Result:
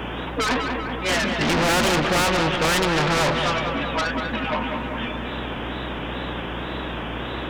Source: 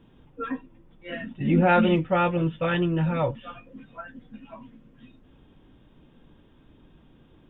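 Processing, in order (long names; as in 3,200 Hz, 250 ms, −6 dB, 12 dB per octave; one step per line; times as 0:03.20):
mid-hump overdrive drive 34 dB, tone 1,100 Hz, clips at −9 dBFS
mains hum 60 Hz, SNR 17 dB
tape wow and flutter 110 cents
on a send: feedback echo with a low-pass in the loop 193 ms, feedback 51%, low-pass 3,200 Hz, level −9 dB
on the sum: every bin compressed towards the loudest bin 2 to 1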